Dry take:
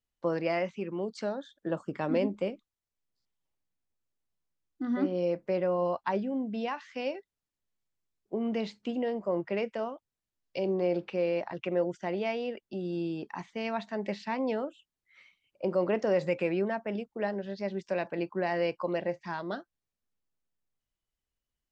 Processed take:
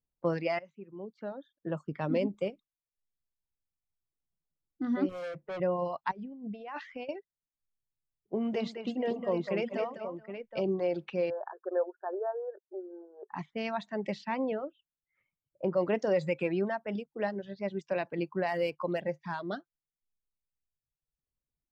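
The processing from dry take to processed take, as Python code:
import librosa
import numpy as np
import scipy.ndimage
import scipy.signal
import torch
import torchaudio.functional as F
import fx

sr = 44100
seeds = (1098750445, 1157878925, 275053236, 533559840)

y = fx.clip_hard(x, sr, threshold_db=-34.0, at=(5.09, 5.6))
y = fx.over_compress(y, sr, threshold_db=-40.0, ratio=-1.0, at=(6.11, 7.09))
y = fx.echo_multitap(y, sr, ms=(204, 428, 771), db=(-5.0, -14.0, -8.5), at=(8.37, 10.6), fade=0.02)
y = fx.brickwall_bandpass(y, sr, low_hz=350.0, high_hz=1800.0, at=(11.3, 13.32))
y = fx.air_absorb(y, sr, metres=240.0, at=(14.44, 15.77))
y = fx.median_filter(y, sr, points=5, at=(18.48, 19.51))
y = fx.edit(y, sr, fx.fade_in_from(start_s=0.59, length_s=1.89, floor_db=-12.5), tone=tone)
y = fx.dereverb_blind(y, sr, rt60_s=1.4)
y = fx.env_lowpass(y, sr, base_hz=740.0, full_db=-30.0)
y = fx.peak_eq(y, sr, hz=150.0, db=8.0, octaves=0.37)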